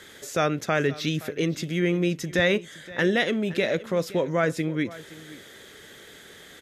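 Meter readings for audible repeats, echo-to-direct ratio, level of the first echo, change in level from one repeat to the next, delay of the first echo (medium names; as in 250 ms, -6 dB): 1, -18.5 dB, -18.5 dB, no regular repeats, 520 ms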